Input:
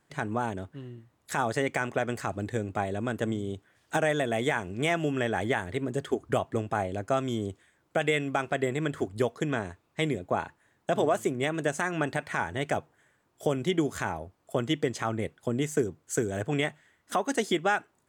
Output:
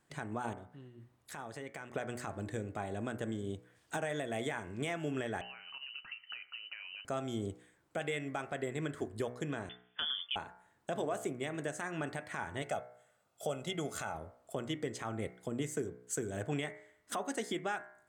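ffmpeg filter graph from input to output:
-filter_complex "[0:a]asettb=1/sr,asplit=3[a][b][c];[a]atrim=end=0.534[d];[b]atrim=start=0.53:end=1.93,asetpts=PTS-STARTPTS,afade=t=in:d=0.004:c=qsin,afade=t=out:st=1.396:d=0.004:c=qsin,equalizer=f=7.6k:t=o:w=0.48:g=-3.5,acompressor=threshold=-48dB:ratio=2:attack=3.2:release=140:knee=1:detection=peak[e];[c]atrim=start=1.926[f];[d][e]acrossfade=d=0.004:c1=hsin:c2=qsin[g];[g][f]acrossfade=d=0.004:c1=qsin:c2=hsin,asettb=1/sr,asplit=3[h][i][j];[h]atrim=end=5.414[k];[i]atrim=start=5.41:end=7.05,asetpts=PTS-STARTPTS,afade=t=in:d=0.004:c=qsin,afade=t=out:st=1.636:d=0.004:c=qsin,acompressor=threshold=-38dB:ratio=16:attack=3.2:release=140:knee=1:detection=peak,lowpass=f=2.6k:t=q:w=0.5098,lowpass=f=2.6k:t=q:w=0.6013,lowpass=f=2.6k:t=q:w=0.9,lowpass=f=2.6k:t=q:w=2.563,afreqshift=-3100[l];[j]atrim=start=7.046[m];[k][l]acrossfade=d=0.004:c1=hsin:c2=qsin[n];[n][m]acrossfade=d=0.004:c1=qsin:c2=hsin,asettb=1/sr,asplit=3[o][p][q];[o]atrim=end=9.694[r];[p]atrim=start=9.69:end=10.36,asetpts=PTS-STARTPTS,afade=t=in:d=0.004:c=qsin,afade=t=out:st=0.666:d=0.004:c=qsin,lowpass=f=3.1k:t=q:w=0.5098,lowpass=f=3.1k:t=q:w=0.6013,lowpass=f=3.1k:t=q:w=0.9,lowpass=f=3.1k:t=q:w=2.563,afreqshift=-3600,acompressor=threshold=-30dB:ratio=2.5:attack=3.2:release=140:knee=1:detection=peak[s];[q]atrim=start=10.356[t];[r][s]acrossfade=d=0.004:c1=hsin:c2=qsin[u];[u][t]acrossfade=d=0.004:c1=qsin:c2=hsin,asettb=1/sr,asplit=3[v][w][x];[v]atrim=end=12.624[y];[w]atrim=start=12.62:end=14.15,asetpts=PTS-STARTPTS,afade=t=in:d=0.004:c=qsin,afade=t=out:st=1.526:d=0.004:c=qsin,highpass=f=240:p=1,equalizer=f=1.9k:w=6.8:g=-8.5,aecho=1:1:1.5:0.58,atrim=end_sample=67473[z];[x]atrim=start=14.146[aa];[y][z]acrossfade=d=0.004:c1=hsin:c2=qsin[ab];[ab][aa]acrossfade=d=0.004:c1=qsin:c2=hsin,equalizer=f=8.4k:w=4.3:g=4,bandreject=f=61.2:t=h:w=4,bandreject=f=122.4:t=h:w=4,bandreject=f=183.6:t=h:w=4,bandreject=f=244.8:t=h:w=4,bandreject=f=306:t=h:w=4,bandreject=f=367.2:t=h:w=4,bandreject=f=428.4:t=h:w=4,bandreject=f=489.6:t=h:w=4,bandreject=f=550.8:t=h:w=4,bandreject=f=612:t=h:w=4,bandreject=f=673.2:t=h:w=4,bandreject=f=734.4:t=h:w=4,bandreject=f=795.6:t=h:w=4,bandreject=f=856.8:t=h:w=4,bandreject=f=918:t=h:w=4,bandreject=f=979.2:t=h:w=4,bandreject=f=1.0404k:t=h:w=4,bandreject=f=1.1016k:t=h:w=4,bandreject=f=1.1628k:t=h:w=4,bandreject=f=1.224k:t=h:w=4,bandreject=f=1.2852k:t=h:w=4,bandreject=f=1.3464k:t=h:w=4,bandreject=f=1.4076k:t=h:w=4,bandreject=f=1.4688k:t=h:w=4,bandreject=f=1.53k:t=h:w=4,bandreject=f=1.5912k:t=h:w=4,bandreject=f=1.6524k:t=h:w=4,bandreject=f=1.7136k:t=h:w=4,bandreject=f=1.7748k:t=h:w=4,bandreject=f=1.836k:t=h:w=4,bandreject=f=1.8972k:t=h:w=4,bandreject=f=1.9584k:t=h:w=4,bandreject=f=2.0196k:t=h:w=4,bandreject=f=2.0808k:t=h:w=4,bandreject=f=2.142k:t=h:w=4,bandreject=f=2.2032k:t=h:w=4,bandreject=f=2.2644k:t=h:w=4,bandreject=f=2.3256k:t=h:w=4,alimiter=limit=-22dB:level=0:latency=1:release=485,volume=-3dB"

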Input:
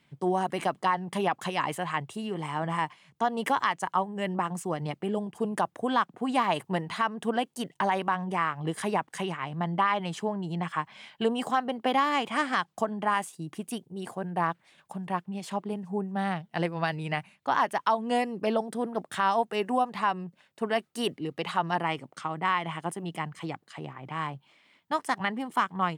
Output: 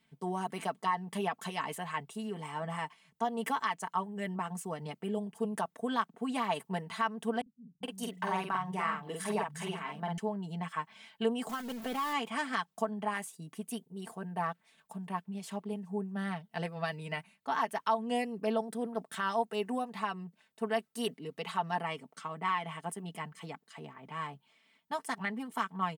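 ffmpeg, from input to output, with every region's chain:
-filter_complex "[0:a]asettb=1/sr,asplit=3[a][b][c];[a]atrim=end=7.414[d];[b]atrim=start=7.41:end=10.18,asetpts=PTS-STARTPTS,afade=t=in:d=0.004:c=qsin,afade=t=out:st=2.766:d=0.004:c=qsin,asplit=2[e][f];[f]adelay=48,volume=-3dB[g];[e][g]amix=inputs=2:normalize=0,atrim=end_sample=122157,acrossover=split=160[h][i];[i]adelay=420[j];[h][j]amix=inputs=2:normalize=0,atrim=end_sample=122157[k];[c]atrim=start=10.176[l];[d][k]acrossfade=d=0.004:c1=hsin:c2=qsin[m];[m][l]acrossfade=d=0.004:c1=qsin:c2=hsin,asettb=1/sr,asplit=3[n][o][p];[n]atrim=end=11.494[q];[o]atrim=start=11.49:end=12.13,asetpts=PTS-STARTPTS,afade=t=in:d=0.004:c=qsin,afade=t=out:st=0.636:d=0.004:c=qsin,aeval=exprs='val(0)+0.5*0.0376*sgn(val(0))':c=same,agate=range=-6dB:threshold=-26dB:ratio=16:release=100:detection=peak,acompressor=threshold=-24dB:ratio=4:attack=3.2:release=140:knee=1:detection=peak[r];[p]atrim=start=12.126[s];[q][r]acrossfade=d=0.004:c1=hsin:c2=qsin[t];[t][s]acrossfade=d=0.004:c1=qsin:c2=hsin,highshelf=f=9.3k:g=8.5,aecho=1:1:4.5:0.72,volume=-8.5dB"

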